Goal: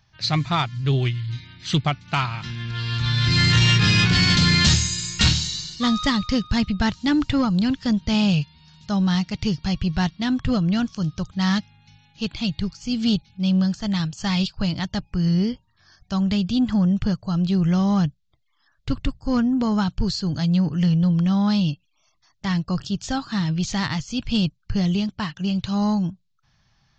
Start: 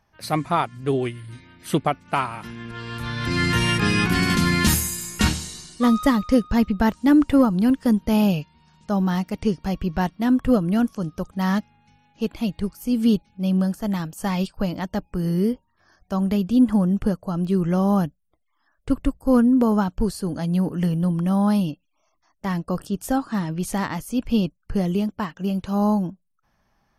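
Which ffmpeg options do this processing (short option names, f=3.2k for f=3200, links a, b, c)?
-af "equalizer=f=125:t=o:w=1:g=10,equalizer=f=250:t=o:w=1:g=-6,equalizer=f=500:t=o:w=1:g=-9,equalizer=f=1k:t=o:w=1:g=-3,equalizer=f=4k:t=o:w=1:g=11,aresample=16000,asoftclip=type=tanh:threshold=-13dB,aresample=44100,volume=2.5dB"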